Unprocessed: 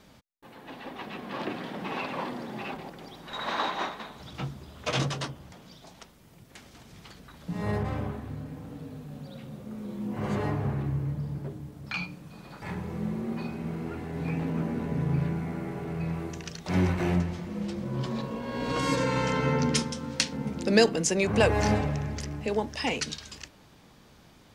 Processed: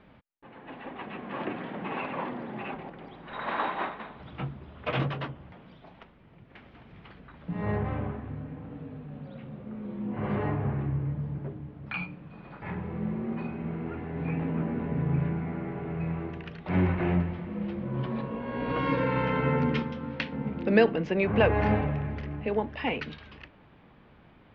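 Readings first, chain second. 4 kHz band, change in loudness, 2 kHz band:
-9.0 dB, -0.5 dB, -0.5 dB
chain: inverse Chebyshev low-pass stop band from 8.5 kHz, stop band 60 dB

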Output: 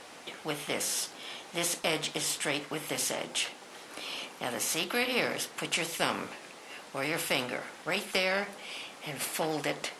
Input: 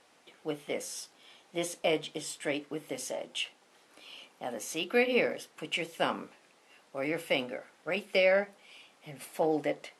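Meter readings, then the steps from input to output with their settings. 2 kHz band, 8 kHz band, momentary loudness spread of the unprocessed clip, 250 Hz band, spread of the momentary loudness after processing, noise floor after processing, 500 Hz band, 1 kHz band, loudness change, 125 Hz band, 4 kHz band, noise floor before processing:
+2.0 dB, +9.5 dB, 18 LU, -1.0 dB, 12 LU, -50 dBFS, -4.0 dB, +2.5 dB, +0.5 dB, +3.5 dB, +5.0 dB, -64 dBFS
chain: spectrum-flattening compressor 2:1; trim +2 dB

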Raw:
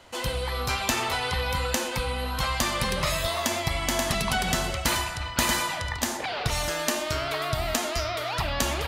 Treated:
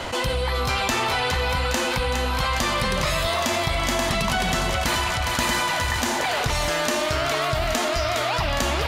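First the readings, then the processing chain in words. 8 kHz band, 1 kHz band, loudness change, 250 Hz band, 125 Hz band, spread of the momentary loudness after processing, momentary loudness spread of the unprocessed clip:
+1.0 dB, +5.0 dB, +4.0 dB, +4.0 dB, +4.0 dB, 1 LU, 4 LU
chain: treble shelf 7.3 kHz -8 dB; on a send: thinning echo 411 ms, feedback 69%, high-pass 420 Hz, level -9 dB; on the sum: level flattener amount 70%

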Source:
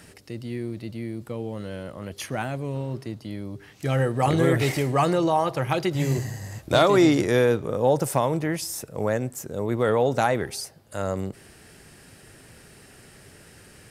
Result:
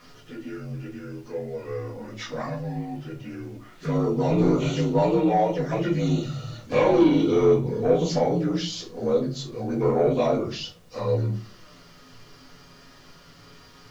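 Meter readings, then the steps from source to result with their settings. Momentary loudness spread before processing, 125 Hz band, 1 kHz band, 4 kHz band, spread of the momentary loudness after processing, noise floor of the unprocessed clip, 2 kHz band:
15 LU, -0.5 dB, -3.0 dB, -2.0 dB, 17 LU, -51 dBFS, -7.0 dB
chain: frequency axis rescaled in octaves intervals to 83%; peaking EQ 230 Hz -3 dB 0.49 oct; touch-sensitive flanger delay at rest 8.5 ms, full sweep at -22.5 dBFS; saturation -16.5 dBFS, distortion -18 dB; added noise pink -64 dBFS; simulated room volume 150 m³, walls furnished, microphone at 1.9 m

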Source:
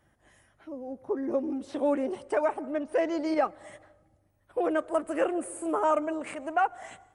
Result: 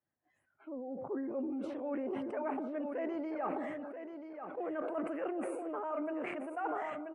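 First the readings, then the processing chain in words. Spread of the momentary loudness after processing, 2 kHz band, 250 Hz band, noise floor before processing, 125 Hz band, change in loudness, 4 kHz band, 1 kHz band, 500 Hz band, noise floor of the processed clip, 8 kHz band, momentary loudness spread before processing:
7 LU, -9.0 dB, -6.0 dB, -68 dBFS, no reading, -9.0 dB, under -10 dB, -10.0 dB, -9.0 dB, -79 dBFS, under -15 dB, 11 LU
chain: high-pass 120 Hz; spectral noise reduction 20 dB; high-order bell 5.7 kHz -14.5 dB; reverse; compression, threshold -32 dBFS, peak gain reduction 11.5 dB; reverse; distance through air 83 m; on a send: feedback delay 984 ms, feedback 25%, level -8.5 dB; on the sum: decay stretcher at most 23 dB/s; trim -3.5 dB

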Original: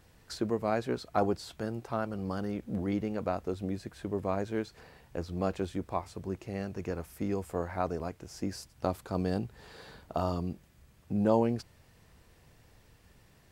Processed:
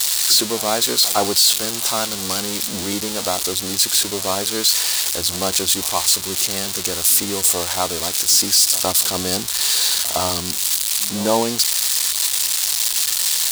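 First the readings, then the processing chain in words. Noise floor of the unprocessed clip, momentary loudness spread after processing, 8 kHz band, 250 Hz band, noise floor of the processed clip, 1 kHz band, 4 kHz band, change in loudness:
-62 dBFS, 7 LU, +39.0 dB, +5.0 dB, -26 dBFS, +11.0 dB, +33.5 dB, +17.5 dB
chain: zero-crossing glitches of -20.5 dBFS; graphic EQ 125/1000/4000/8000 Hz -8/+5/+10/+7 dB; pre-echo 112 ms -18 dB; trim +6.5 dB

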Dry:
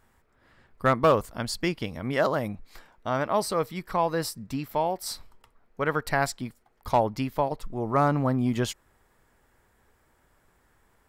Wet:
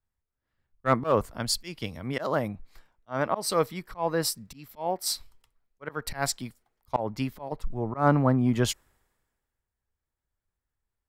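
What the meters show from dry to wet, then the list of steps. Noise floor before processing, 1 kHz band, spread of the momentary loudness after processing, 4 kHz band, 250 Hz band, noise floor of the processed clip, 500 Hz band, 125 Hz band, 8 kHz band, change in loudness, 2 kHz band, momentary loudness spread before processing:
-66 dBFS, -3.5 dB, 14 LU, +3.0 dB, 0.0 dB, under -85 dBFS, -2.5 dB, +0.5 dB, +5.0 dB, -1.5 dB, -3.5 dB, 13 LU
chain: slow attack 140 ms; three bands expanded up and down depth 70%

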